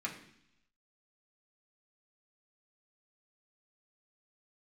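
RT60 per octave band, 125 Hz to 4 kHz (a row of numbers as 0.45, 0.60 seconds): 0.95, 0.90, 0.70, 0.70, 0.90, 1.0 seconds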